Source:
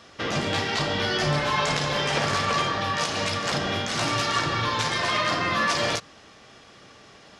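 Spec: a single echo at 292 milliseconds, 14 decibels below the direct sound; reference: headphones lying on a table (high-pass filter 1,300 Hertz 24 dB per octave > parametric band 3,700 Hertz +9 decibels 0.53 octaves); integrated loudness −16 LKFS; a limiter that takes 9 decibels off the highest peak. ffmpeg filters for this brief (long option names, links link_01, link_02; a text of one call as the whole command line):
ffmpeg -i in.wav -af "alimiter=limit=-20dB:level=0:latency=1,highpass=frequency=1300:width=0.5412,highpass=frequency=1300:width=1.3066,equalizer=frequency=3700:width_type=o:width=0.53:gain=9,aecho=1:1:292:0.2,volume=11dB" out.wav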